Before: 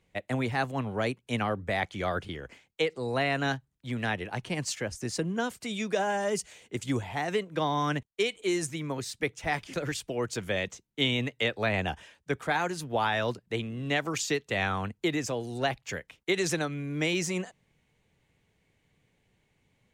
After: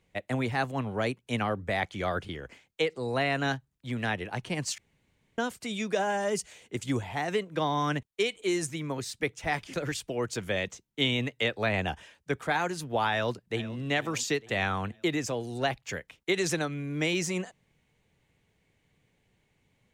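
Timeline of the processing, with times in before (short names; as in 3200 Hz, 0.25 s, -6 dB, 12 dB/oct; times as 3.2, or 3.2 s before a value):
4.78–5.38 room tone
13.11–13.78 echo throw 0.45 s, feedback 50%, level -16.5 dB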